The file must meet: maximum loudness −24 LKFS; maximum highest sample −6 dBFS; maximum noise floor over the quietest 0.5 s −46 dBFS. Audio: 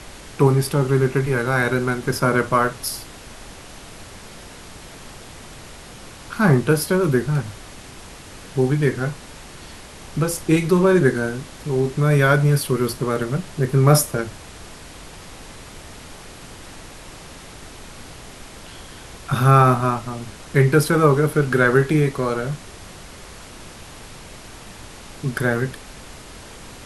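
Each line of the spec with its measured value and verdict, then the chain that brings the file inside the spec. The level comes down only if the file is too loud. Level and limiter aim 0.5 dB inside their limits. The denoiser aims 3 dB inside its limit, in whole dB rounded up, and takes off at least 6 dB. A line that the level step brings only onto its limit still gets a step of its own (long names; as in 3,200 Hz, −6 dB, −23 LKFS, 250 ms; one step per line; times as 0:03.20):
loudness −19.0 LKFS: out of spec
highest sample −1.5 dBFS: out of spec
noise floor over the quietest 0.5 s −39 dBFS: out of spec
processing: broadband denoise 6 dB, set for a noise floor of −39 dBFS
level −5.5 dB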